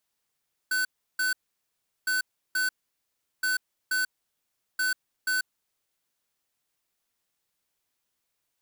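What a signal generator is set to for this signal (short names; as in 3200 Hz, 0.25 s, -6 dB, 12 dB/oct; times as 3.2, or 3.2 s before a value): beep pattern square 1510 Hz, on 0.14 s, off 0.34 s, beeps 2, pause 0.74 s, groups 4, -26 dBFS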